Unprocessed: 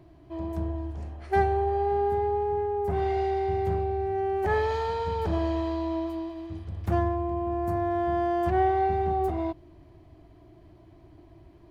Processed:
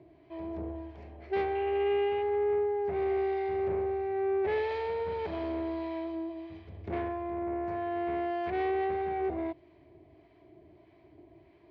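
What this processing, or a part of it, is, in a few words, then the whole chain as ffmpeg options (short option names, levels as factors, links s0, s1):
guitar amplifier with harmonic tremolo: -filter_complex "[0:a]acrossover=split=770[s0][s1];[s0]aeval=exprs='val(0)*(1-0.5/2+0.5/2*cos(2*PI*1.6*n/s))':c=same[s2];[s1]aeval=exprs='val(0)*(1-0.5/2-0.5/2*cos(2*PI*1.6*n/s))':c=same[s3];[s2][s3]amix=inputs=2:normalize=0,asoftclip=type=tanh:threshold=0.0422,highpass=95,equalizer=f=110:t=q:w=4:g=-5,equalizer=f=170:t=q:w=4:g=-3,equalizer=f=410:t=q:w=4:g=7,equalizer=f=620:t=q:w=4:g=4,equalizer=f=1300:t=q:w=4:g=-4,equalizer=f=2200:t=q:w=4:g=9,lowpass=f=4500:w=0.5412,lowpass=f=4500:w=1.3066,asettb=1/sr,asplit=3[s4][s5][s6];[s4]atrim=end=1.554[s7];[s5]atrim=start=1.55:end=2.23,asetpts=PTS-STARTPTS,afade=t=in:d=0.004:c=qsin,afade=t=out:st=0.676:d=0.004:c=qsin,equalizer=f=2800:w=3.4:g=14[s8];[s6]atrim=start=2.226[s9];[s7][s8]acrossfade=d=0.004:c1=hsin:c2=qsin[s10];[s10][s9]acrossfade=d=0.004:c1=qsin:c2=hsin,volume=0.75"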